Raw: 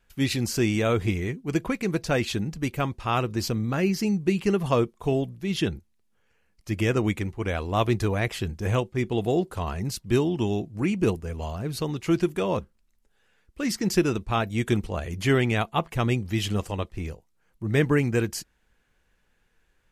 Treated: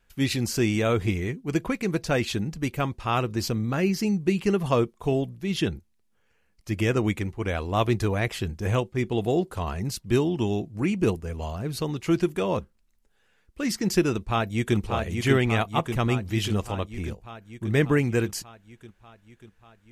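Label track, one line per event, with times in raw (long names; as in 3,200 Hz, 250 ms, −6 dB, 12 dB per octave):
14.160000	14.770000	delay throw 590 ms, feedback 70%, level −4.5 dB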